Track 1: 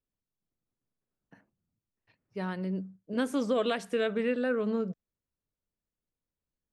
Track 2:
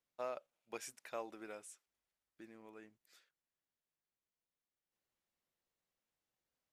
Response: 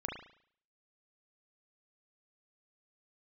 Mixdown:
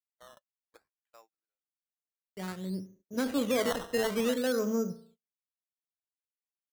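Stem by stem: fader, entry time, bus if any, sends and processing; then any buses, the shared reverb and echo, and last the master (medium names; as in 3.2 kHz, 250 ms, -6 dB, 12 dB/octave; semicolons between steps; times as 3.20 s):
-1.5 dB, 0.00 s, send -11 dB, three bands expanded up and down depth 100%
-8.0 dB, 0.00 s, no send, band-pass filter 1.7 kHz, Q 0.73; auto duck -21 dB, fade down 1.25 s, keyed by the first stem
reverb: on, RT60 0.60 s, pre-delay 35 ms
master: gate -58 dBFS, range -32 dB; decimation with a swept rate 13×, swing 100% 0.58 Hz; peak limiter -20.5 dBFS, peak gain reduction 6 dB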